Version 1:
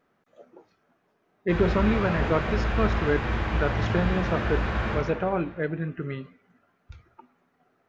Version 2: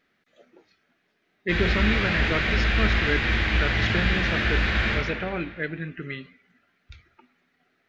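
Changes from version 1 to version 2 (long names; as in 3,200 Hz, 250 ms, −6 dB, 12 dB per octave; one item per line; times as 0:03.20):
background +4.0 dB
master: add graphic EQ with 10 bands 125 Hz −5 dB, 500 Hz −4 dB, 1,000 Hz −9 dB, 2,000 Hz +8 dB, 4,000 Hz +8 dB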